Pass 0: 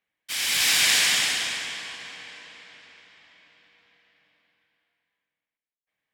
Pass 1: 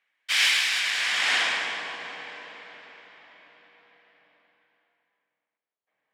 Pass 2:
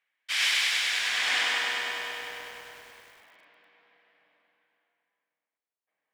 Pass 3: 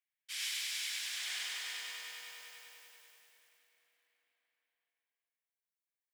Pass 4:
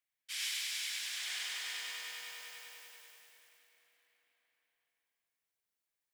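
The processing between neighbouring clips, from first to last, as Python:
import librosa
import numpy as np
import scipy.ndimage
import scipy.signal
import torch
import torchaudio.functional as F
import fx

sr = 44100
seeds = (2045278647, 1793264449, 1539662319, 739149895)

y1 = fx.over_compress(x, sr, threshold_db=-26.0, ratio=-1.0)
y1 = fx.filter_sweep_bandpass(y1, sr, from_hz=1900.0, to_hz=700.0, start_s=0.71, end_s=1.87, q=0.76)
y1 = F.gain(torch.from_numpy(y1), 6.5).numpy()
y2 = fx.low_shelf(y1, sr, hz=120.0, db=-6.0)
y2 = fx.echo_crushed(y2, sr, ms=100, feedback_pct=80, bits=8, wet_db=-4)
y2 = F.gain(torch.from_numpy(y2), -5.0).numpy()
y3 = scipy.signal.lfilter([1.0, -0.9], [1.0], y2)
y3 = fx.echo_feedback(y3, sr, ms=383, feedback_pct=35, wet_db=-5.5)
y3 = F.gain(torch.from_numpy(y3), -6.5).numpy()
y4 = fx.rider(y3, sr, range_db=4, speed_s=2.0)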